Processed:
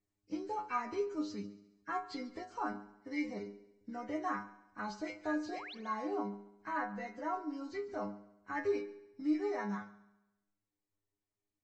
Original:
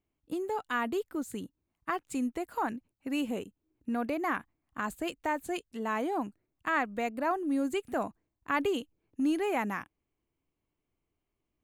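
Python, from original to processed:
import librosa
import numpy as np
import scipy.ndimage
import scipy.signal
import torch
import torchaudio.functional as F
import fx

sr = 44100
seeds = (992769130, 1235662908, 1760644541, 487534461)

y = fx.freq_compress(x, sr, knee_hz=1400.0, ratio=1.5)
y = fx.rider(y, sr, range_db=10, speed_s=2.0)
y = fx.stiff_resonator(y, sr, f0_hz=100.0, decay_s=0.35, stiffness=0.002)
y = fx.spec_paint(y, sr, seeds[0], shape='rise', start_s=5.48, length_s=0.27, low_hz=240.0, high_hz=4800.0, level_db=-51.0)
y = fx.echo_heads(y, sr, ms=69, heads='first and second', feedback_pct=46, wet_db=-20.5)
y = y * 10.0 ** (3.5 / 20.0)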